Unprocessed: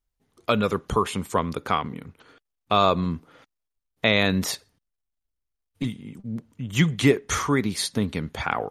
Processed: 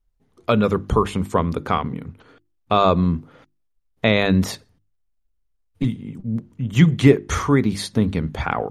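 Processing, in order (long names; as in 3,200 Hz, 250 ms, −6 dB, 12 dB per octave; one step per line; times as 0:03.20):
spectral tilt −2 dB per octave
mains-hum notches 50/100/150/200/250/300/350 Hz
level +2.5 dB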